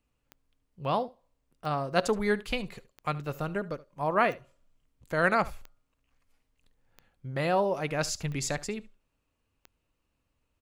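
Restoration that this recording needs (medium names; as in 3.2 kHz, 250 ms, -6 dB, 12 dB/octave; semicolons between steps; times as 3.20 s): de-click; inverse comb 73 ms -19.5 dB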